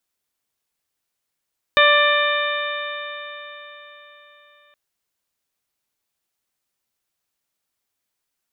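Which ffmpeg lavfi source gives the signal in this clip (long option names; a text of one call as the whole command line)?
ffmpeg -f lavfi -i "aevalsrc='0.158*pow(10,-3*t/4.11)*sin(2*PI*585.58*t)+0.158*pow(10,-3*t/4.11)*sin(2*PI*1174.67*t)+0.178*pow(10,-3*t/4.11)*sin(2*PI*1770.72*t)+0.126*pow(10,-3*t/4.11)*sin(2*PI*2377.15*t)+0.0596*pow(10,-3*t/4.11)*sin(2*PI*2997.23*t)+0.126*pow(10,-3*t/4.11)*sin(2*PI*3634.16*t)':duration=2.97:sample_rate=44100" out.wav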